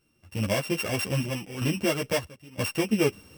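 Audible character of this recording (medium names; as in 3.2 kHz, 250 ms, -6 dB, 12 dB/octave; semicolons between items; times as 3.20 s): a buzz of ramps at a fixed pitch in blocks of 16 samples; random-step tremolo 3.1 Hz, depth 90%; a shimmering, thickened sound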